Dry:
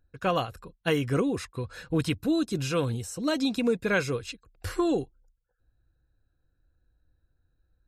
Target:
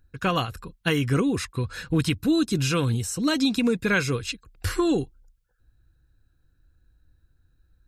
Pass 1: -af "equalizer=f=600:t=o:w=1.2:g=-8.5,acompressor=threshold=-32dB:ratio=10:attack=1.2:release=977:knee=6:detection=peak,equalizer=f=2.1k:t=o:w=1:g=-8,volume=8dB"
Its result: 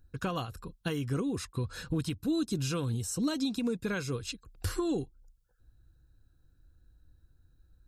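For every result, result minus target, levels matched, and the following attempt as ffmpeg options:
compressor: peak gain reduction +10 dB; 2000 Hz band -4.5 dB
-af "equalizer=f=600:t=o:w=1.2:g=-8.5,acompressor=threshold=-20.5dB:ratio=10:attack=1.2:release=977:knee=6:detection=peak,equalizer=f=2.1k:t=o:w=1:g=-8,volume=8dB"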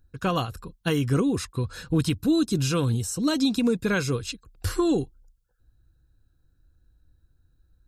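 2000 Hz band -4.5 dB
-af "equalizer=f=600:t=o:w=1.2:g=-8.5,acompressor=threshold=-20.5dB:ratio=10:attack=1.2:release=977:knee=6:detection=peak,volume=8dB"

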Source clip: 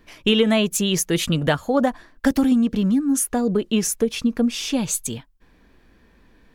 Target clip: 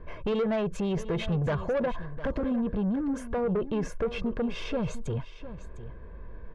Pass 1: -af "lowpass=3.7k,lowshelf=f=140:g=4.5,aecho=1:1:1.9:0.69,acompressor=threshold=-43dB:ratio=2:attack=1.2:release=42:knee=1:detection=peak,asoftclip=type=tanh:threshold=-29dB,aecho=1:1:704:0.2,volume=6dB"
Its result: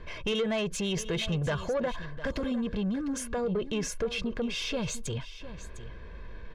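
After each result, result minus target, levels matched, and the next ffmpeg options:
4000 Hz band +10.0 dB; compressor: peak gain reduction +4 dB
-af "lowpass=1.2k,lowshelf=f=140:g=4.5,aecho=1:1:1.9:0.69,acompressor=threshold=-43dB:ratio=2:attack=1.2:release=42:knee=1:detection=peak,asoftclip=type=tanh:threshold=-29dB,aecho=1:1:704:0.2,volume=6dB"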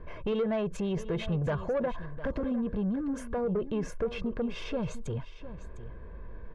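compressor: peak gain reduction +4 dB
-af "lowpass=1.2k,lowshelf=f=140:g=4.5,aecho=1:1:1.9:0.69,acompressor=threshold=-35.5dB:ratio=2:attack=1.2:release=42:knee=1:detection=peak,asoftclip=type=tanh:threshold=-29dB,aecho=1:1:704:0.2,volume=6dB"

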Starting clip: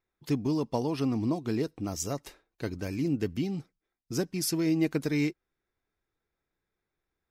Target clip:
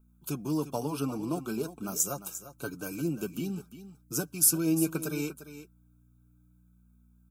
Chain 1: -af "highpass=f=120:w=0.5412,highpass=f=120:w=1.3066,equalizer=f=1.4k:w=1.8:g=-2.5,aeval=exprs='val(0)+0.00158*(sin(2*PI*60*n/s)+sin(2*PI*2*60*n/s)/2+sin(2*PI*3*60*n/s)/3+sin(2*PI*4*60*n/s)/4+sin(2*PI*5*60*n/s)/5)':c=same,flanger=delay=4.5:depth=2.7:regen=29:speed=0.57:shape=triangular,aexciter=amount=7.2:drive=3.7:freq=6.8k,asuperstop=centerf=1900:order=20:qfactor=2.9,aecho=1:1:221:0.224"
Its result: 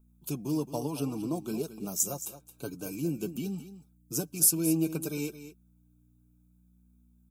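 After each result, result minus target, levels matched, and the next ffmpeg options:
echo 0.128 s early; 1000 Hz band -3.5 dB
-af "highpass=f=120:w=0.5412,highpass=f=120:w=1.3066,equalizer=f=1.4k:w=1.8:g=-2.5,aeval=exprs='val(0)+0.00158*(sin(2*PI*60*n/s)+sin(2*PI*2*60*n/s)/2+sin(2*PI*3*60*n/s)/3+sin(2*PI*4*60*n/s)/4+sin(2*PI*5*60*n/s)/5)':c=same,flanger=delay=4.5:depth=2.7:regen=29:speed=0.57:shape=triangular,aexciter=amount=7.2:drive=3.7:freq=6.8k,asuperstop=centerf=1900:order=20:qfactor=2.9,aecho=1:1:349:0.224"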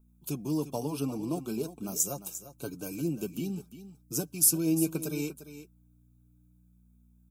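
1000 Hz band -3.5 dB
-af "highpass=f=120:w=0.5412,highpass=f=120:w=1.3066,equalizer=f=1.4k:w=1.8:g=8.5,aeval=exprs='val(0)+0.00158*(sin(2*PI*60*n/s)+sin(2*PI*2*60*n/s)/2+sin(2*PI*3*60*n/s)/3+sin(2*PI*4*60*n/s)/4+sin(2*PI*5*60*n/s)/5)':c=same,flanger=delay=4.5:depth=2.7:regen=29:speed=0.57:shape=triangular,aexciter=amount=7.2:drive=3.7:freq=6.8k,asuperstop=centerf=1900:order=20:qfactor=2.9,aecho=1:1:349:0.224"

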